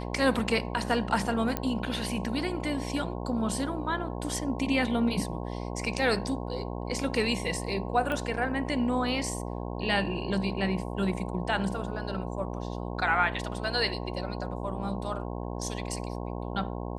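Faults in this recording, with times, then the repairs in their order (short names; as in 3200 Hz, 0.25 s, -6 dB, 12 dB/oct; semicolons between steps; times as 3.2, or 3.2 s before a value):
buzz 60 Hz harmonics 18 -35 dBFS
1.57 pop -13 dBFS
8.12 pop -20 dBFS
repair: de-click; de-hum 60 Hz, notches 18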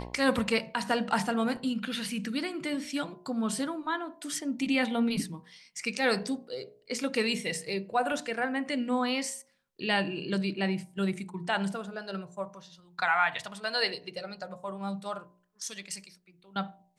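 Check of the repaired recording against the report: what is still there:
1.57 pop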